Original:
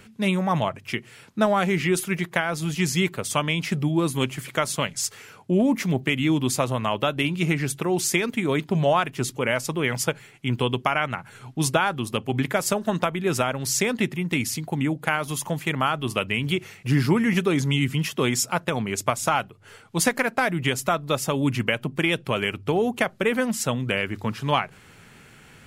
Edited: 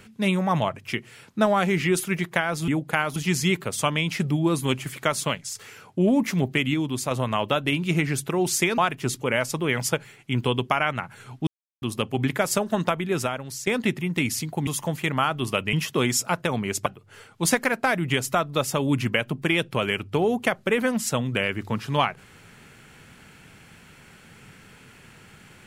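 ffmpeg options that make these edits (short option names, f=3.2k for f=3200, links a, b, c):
-filter_complex "[0:a]asplit=13[a][b][c][d][e][f][g][h][i][j][k][l][m];[a]atrim=end=2.682[n];[b]atrim=start=14.818:end=15.302[o];[c]atrim=start=2.678:end=5.07,asetpts=PTS-STARTPTS,afade=t=out:st=2.112:d=0.28:silence=0.334965[p];[d]atrim=start=5.07:end=6.262,asetpts=PTS-STARTPTS,afade=t=in:d=0.004:c=hsin:silence=0.334965[q];[e]atrim=start=6.258:end=6.632,asetpts=PTS-STARTPTS,volume=-4.5dB[r];[f]atrim=start=6.628:end=8.302[s];[g]atrim=start=8.928:end=11.62,asetpts=PTS-STARTPTS,afade=t=out:st=2.688:d=0.004:c=hsin[t];[h]atrim=start=11.62:end=11.97,asetpts=PTS-STARTPTS,volume=0[u];[i]atrim=start=11.97:end=13.82,asetpts=PTS-STARTPTS,afade=t=in:d=0.004:c=hsin,afade=t=out:st=1.18:d=0.67:silence=0.188365[v];[j]atrim=start=13.82:end=14.822,asetpts=PTS-STARTPTS,afade=t=in:d=0.004:c=hsin:silence=0.188365[w];[k]atrim=start=15.298:end=16.362[x];[l]atrim=start=17.958:end=19.092[y];[m]atrim=start=19.398[z];[n][o]acrossfade=d=0.004:c1=hsin:c2=hsin[aa];[p][q]concat=n=2:v=0:a=1[ab];[aa][ab]acrossfade=d=0.004:c1=hsin:c2=hsin[ac];[ac][r]acrossfade=d=0.004:c1=hsin:c2=hsin[ad];[ad][s]acrossfade=d=0.004:c1=hsin:c2=hsin[ae];[t][u][v][w]concat=n=4:v=0:a=1[af];[ae][af]acrossfade=d=0.004:c1=hsin:c2=hsin[ag];[ag][x]acrossfade=d=0.004:c1=hsin:c2=hsin[ah];[ah][y]acrossfade=d=0.004:c1=hsin:c2=hsin[ai];[ai][z]acrossfade=d=0.004:c1=hsin:c2=hsin"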